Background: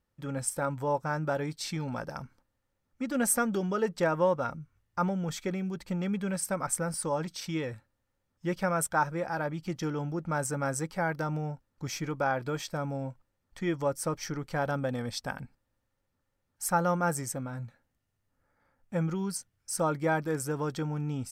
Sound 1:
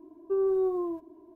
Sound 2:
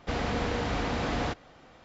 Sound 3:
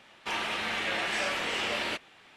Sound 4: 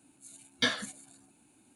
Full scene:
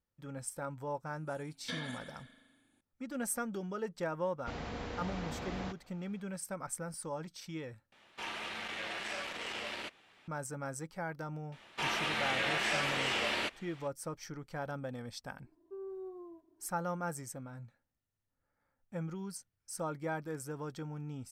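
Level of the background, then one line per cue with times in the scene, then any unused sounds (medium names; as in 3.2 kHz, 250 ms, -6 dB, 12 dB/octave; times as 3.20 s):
background -9.5 dB
1.06 s: add 4 -14 dB + spring tank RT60 1.5 s, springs 40 ms, chirp 40 ms, DRR -1 dB
4.39 s: add 2 -11.5 dB
7.92 s: replace with 3 -7.5 dB + transformer saturation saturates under 1.8 kHz
11.52 s: add 3 -2 dB
15.41 s: add 1 -18 dB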